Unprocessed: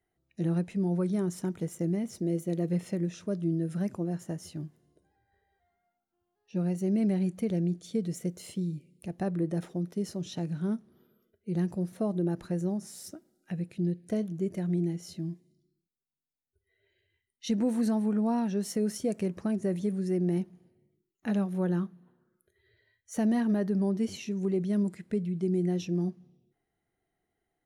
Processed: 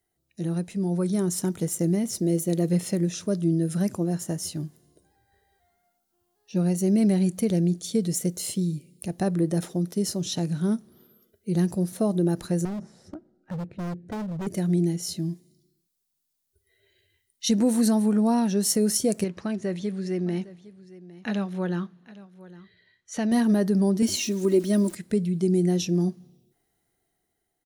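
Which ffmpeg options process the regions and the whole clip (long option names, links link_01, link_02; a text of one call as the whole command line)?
ffmpeg -i in.wav -filter_complex "[0:a]asettb=1/sr,asplit=3[link_01][link_02][link_03];[link_01]atrim=end=12.654[link_04];[link_02]atrim=start=12.65:end=14.47,asetpts=PTS-STARTPTS,afade=type=in:duration=0.004:curve=qsin,afade=type=out:start_time=1.816:duration=0.004:curve=qsin,lowpass=1300,lowshelf=frequency=88:gain=10.5,asoftclip=type=hard:threshold=-35.5dB[link_05];[link_03]atrim=start=14.466[link_06];[link_04][link_05]acrossfade=duration=0.004:curve1=hsin:curve2=qsin[link_07];[link_07][link_06]acrossfade=duration=0.004:curve1=qsin:curve2=hsin,asettb=1/sr,asplit=3[link_08][link_09][link_10];[link_08]atrim=end=19.244[link_11];[link_09]atrim=start=19.24:end=23.32,asetpts=PTS-STARTPTS,afade=type=in:duration=0.004:curve=qsin,afade=type=out:start_time=4.076:duration=0.004:curve=qsin,lowpass=3000,tiltshelf=frequency=1300:gain=-6,aecho=1:1:808:0.119,atrim=end_sample=179928[link_12];[link_10]atrim=start=23.316[link_13];[link_11][link_12]acrossfade=duration=0.004:curve1=hsin:curve2=qsin[link_14];[link_14][link_13]acrossfade=duration=0.004:curve1=qsin:curve2=hsin,asettb=1/sr,asplit=3[link_15][link_16][link_17];[link_15]atrim=end=24.024[link_18];[link_16]atrim=start=24.02:end=24.95,asetpts=PTS-STARTPTS,afade=type=in:duration=0.004:curve=qsin,afade=type=out:start_time=0.926:duration=0.004:curve=qsin,aecho=1:1:3.2:0.99,atrim=end_sample=41013,aeval=exprs='val(0)*gte(abs(val(0)),0.00266)':channel_layout=same[link_19];[link_17]atrim=start=24.946[link_20];[link_18][link_19]acrossfade=duration=0.004:curve1=hsin:curve2=qsin[link_21];[link_21][link_20]acrossfade=duration=0.004:curve1=qsin:curve2=hsin,firequalizer=gain_entry='entry(2400,0);entry(4100,7);entry(10000,11)':delay=0.05:min_phase=1,dynaudnorm=framelen=190:gausssize=11:maxgain=6dB" out.wav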